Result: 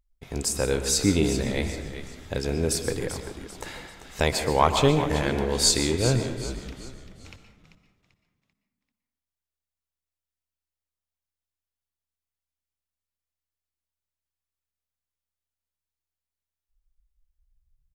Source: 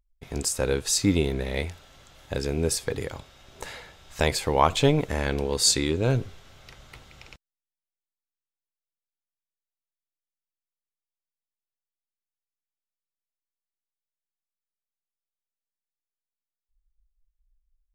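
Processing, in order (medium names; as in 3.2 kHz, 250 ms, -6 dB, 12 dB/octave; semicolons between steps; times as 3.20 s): 6.84–7.25 s: steep low-pass 650 Hz 48 dB/octave; on a send: frequency-shifting echo 390 ms, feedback 37%, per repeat -73 Hz, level -11 dB; on the sum: plate-style reverb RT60 0.76 s, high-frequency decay 0.5×, pre-delay 110 ms, DRR 7.5 dB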